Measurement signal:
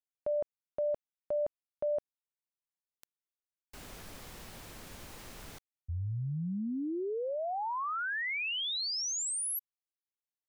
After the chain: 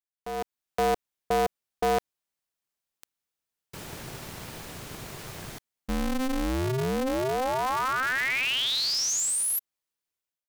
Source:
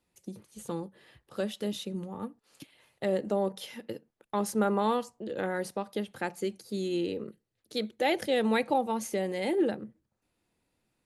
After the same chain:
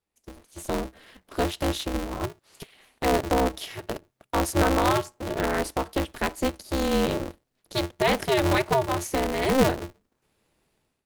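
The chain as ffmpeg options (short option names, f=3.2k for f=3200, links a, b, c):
-af "dynaudnorm=f=180:g=5:m=16dB,aeval=exprs='val(0)*sgn(sin(2*PI*130*n/s))':c=same,volume=-8.5dB"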